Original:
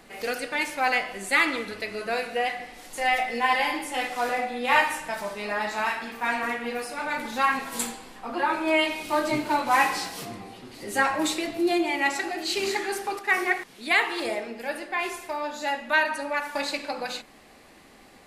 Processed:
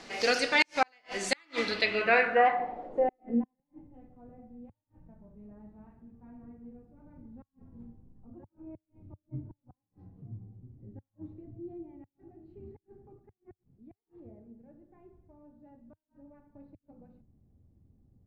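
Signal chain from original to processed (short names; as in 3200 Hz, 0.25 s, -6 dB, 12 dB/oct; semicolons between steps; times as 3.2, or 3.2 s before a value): low shelf 65 Hz -7 dB; de-hum 49.54 Hz, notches 4; flipped gate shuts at -14 dBFS, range -41 dB; low-pass sweep 5600 Hz -> 100 Hz, 1.61–3.89; gain +2.5 dB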